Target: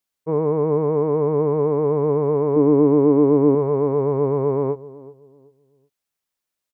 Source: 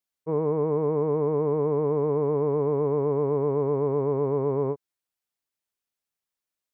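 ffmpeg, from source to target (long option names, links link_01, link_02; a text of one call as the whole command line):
ffmpeg -i in.wav -filter_complex "[0:a]asettb=1/sr,asplit=3[link_01][link_02][link_03];[link_01]atrim=end=2.564[link_04];[link_02]atrim=start=2.56:end=3.55,asetpts=PTS-STARTPTS,afade=type=in:duration=0.004:curve=qsin,afade=type=out:start_time=0.986:duration=0.004:curve=qsin,equalizer=frequency=300:width=3.2:gain=13.5[link_05];[link_03]atrim=start=3.546[link_06];[link_04][link_05]acrossfade=duration=0.004:curve1=hsin:curve2=qsin[link_07];[link_07][link_06]acrossfade=duration=0.004:curve1=qsin:curve2=hsin,asplit=2[link_08][link_09];[link_09]adelay=379,lowpass=frequency=880:poles=1,volume=-17.5dB,asplit=2[link_10][link_11];[link_11]adelay=379,lowpass=frequency=880:poles=1,volume=0.31,asplit=2[link_12][link_13];[link_13]adelay=379,lowpass=frequency=880:poles=1,volume=0.31[link_14];[link_08][link_10][link_12][link_14]amix=inputs=4:normalize=0,volume=5dB" out.wav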